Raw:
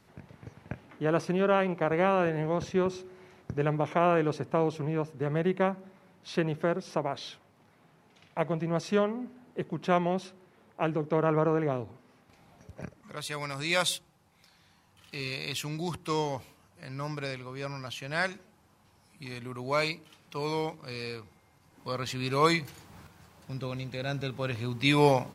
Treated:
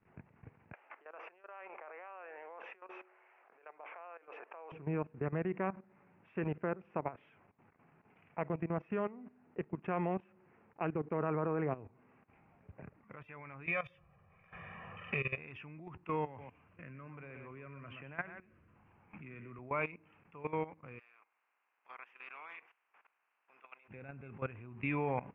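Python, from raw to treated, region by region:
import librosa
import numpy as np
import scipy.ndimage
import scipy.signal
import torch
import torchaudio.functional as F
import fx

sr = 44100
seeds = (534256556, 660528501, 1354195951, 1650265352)

y = fx.chain(x, sr, fx.over_compress(threshold_db=-37.0, ratio=-1.0),
    fx.highpass(hz=560.0, slope=24), at=(0.73, 4.72))
y = fx.chain(y, sr, fx.comb(ms=1.7, depth=0.82),
    fx.band_squash(depth_pct=100), at=(13.66, 15.38))
y = fx.chain(y, sr, fx.filter_lfo_notch(shape='square', hz=1.2, low_hz=830.0, high_hz=7900.0, q=1.9),
    fx.echo_single(ms=122, db=-10.0),
    fx.band_squash(depth_pct=70), at=(16.26, 19.59))
y = fx.spec_clip(y, sr, under_db=18, at=(20.98, 23.88), fade=0.02)
y = fx.highpass(y, sr, hz=1300.0, slope=12, at=(20.98, 23.88), fade=0.02)
y = fx.peak_eq(y, sr, hz=2000.0, db=-9.5, octaves=1.8, at=(20.98, 23.88), fade=0.02)
y = scipy.signal.sosfilt(scipy.signal.ellip(4, 1.0, 40, 2600.0, 'lowpass', fs=sr, output='sos'), y)
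y = fx.peak_eq(y, sr, hz=580.0, db=-3.5, octaves=0.33)
y = fx.level_steps(y, sr, step_db=16)
y = F.gain(torch.from_numpy(y), -2.0).numpy()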